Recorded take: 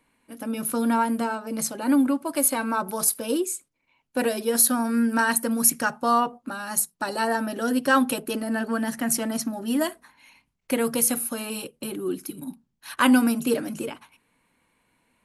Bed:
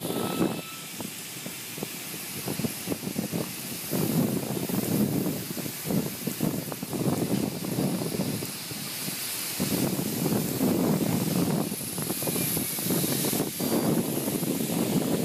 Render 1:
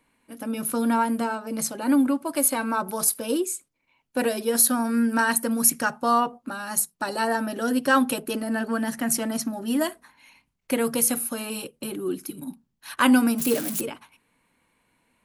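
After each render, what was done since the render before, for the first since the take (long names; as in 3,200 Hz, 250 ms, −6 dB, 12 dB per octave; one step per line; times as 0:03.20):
0:13.38–0:13.81: spike at every zero crossing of −20.5 dBFS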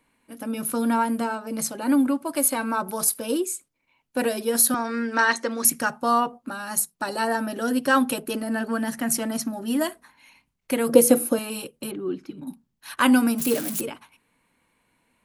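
0:04.74–0:05.65: loudspeaker in its box 330–6,300 Hz, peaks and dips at 370 Hz +8 dB, 540 Hz +3 dB, 1,200 Hz +4 dB, 2,000 Hz +8 dB, 3,700 Hz +7 dB, 6,200 Hz +7 dB
0:10.89–0:11.39: hollow resonant body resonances 330/500 Hz, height 18 dB, ringing for 40 ms
0:11.91–0:12.47: high-frequency loss of the air 210 metres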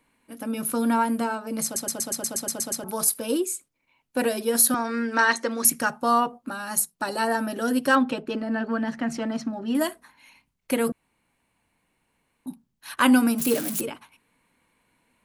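0:01.64: stutter in place 0.12 s, 10 plays
0:07.95–0:09.75: high-frequency loss of the air 160 metres
0:10.92–0:12.46: fill with room tone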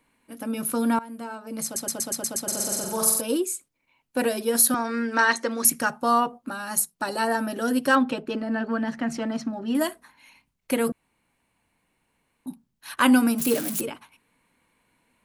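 0:00.99–0:01.91: fade in, from −20.5 dB
0:02.43–0:03.21: flutter between parallel walls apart 7.7 metres, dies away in 0.83 s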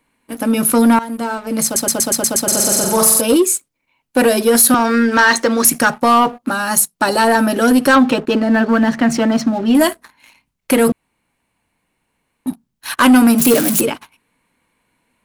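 in parallel at +1 dB: brickwall limiter −16.5 dBFS, peak gain reduction 11 dB
on the sum: leveller curve on the samples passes 2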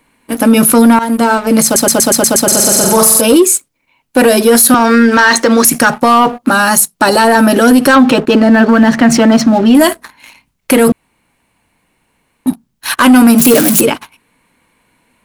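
speech leveller 2 s
boost into a limiter +9.5 dB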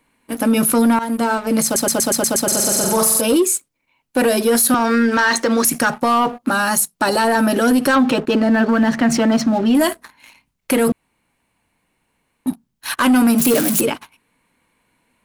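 level −8 dB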